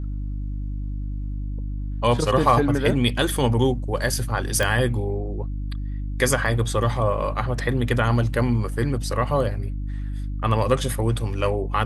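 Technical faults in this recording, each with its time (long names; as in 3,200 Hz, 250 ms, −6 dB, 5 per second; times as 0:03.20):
mains hum 50 Hz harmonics 6 −28 dBFS
0:04.63: click −9 dBFS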